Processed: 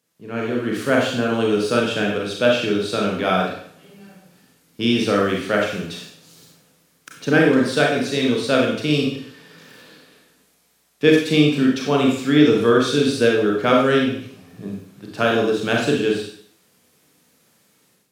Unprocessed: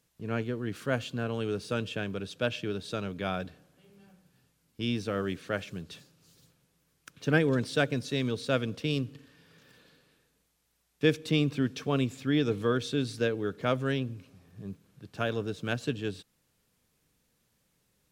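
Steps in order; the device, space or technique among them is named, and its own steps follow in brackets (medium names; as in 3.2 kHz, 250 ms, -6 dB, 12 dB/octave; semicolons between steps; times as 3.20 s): far laptop microphone (reverberation RT60 0.55 s, pre-delay 29 ms, DRR -1.5 dB; high-pass 170 Hz 12 dB/octave; level rider gain up to 11 dB)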